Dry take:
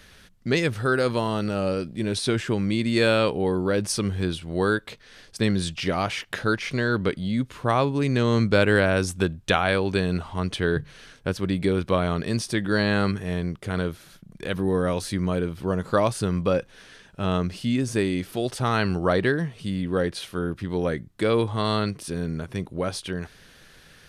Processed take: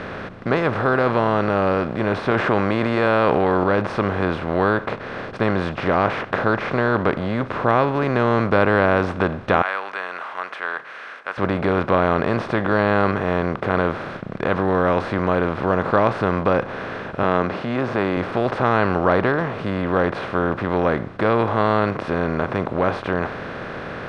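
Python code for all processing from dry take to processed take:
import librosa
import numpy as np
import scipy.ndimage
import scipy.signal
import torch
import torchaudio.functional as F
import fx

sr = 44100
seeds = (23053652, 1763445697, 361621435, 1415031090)

y = fx.chain(x, sr, fx.low_shelf(hz=250.0, db=-8.5),
    fx.env_flatten(amount_pct=70), at=(2.31, 3.64))
y = fx.chain(y, sr, fx.highpass(hz=1400.0, slope=24),
    fx.peak_eq(hz=4200.0, db=-11.5, octaves=1.2), at=(9.62, 11.38))
y = fx.chain(y, sr, fx.bandpass_edges(low_hz=170.0, high_hz=5500.0),
    fx.transient(attack_db=-5, sustain_db=0), at=(17.23, 18.17))
y = fx.bin_compress(y, sr, power=0.4)
y = scipy.signal.sosfilt(scipy.signal.butter(2, 2000.0, 'lowpass', fs=sr, output='sos'), y)
y = fx.dynamic_eq(y, sr, hz=920.0, q=1.2, threshold_db=-33.0, ratio=4.0, max_db=6)
y = F.gain(torch.from_numpy(y), -3.0).numpy()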